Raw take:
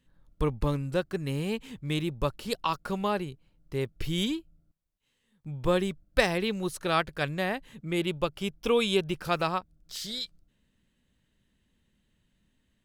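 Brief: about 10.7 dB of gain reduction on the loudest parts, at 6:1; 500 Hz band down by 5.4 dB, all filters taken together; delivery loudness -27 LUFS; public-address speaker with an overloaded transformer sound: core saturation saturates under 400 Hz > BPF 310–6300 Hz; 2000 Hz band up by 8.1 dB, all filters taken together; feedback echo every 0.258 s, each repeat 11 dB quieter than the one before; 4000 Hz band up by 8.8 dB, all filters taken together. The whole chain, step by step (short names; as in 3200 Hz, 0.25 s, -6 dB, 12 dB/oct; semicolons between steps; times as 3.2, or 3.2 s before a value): bell 500 Hz -6 dB; bell 2000 Hz +8 dB; bell 4000 Hz +8.5 dB; compressor 6:1, threshold -26 dBFS; feedback echo 0.258 s, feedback 28%, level -11 dB; core saturation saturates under 400 Hz; BPF 310–6300 Hz; gain +6 dB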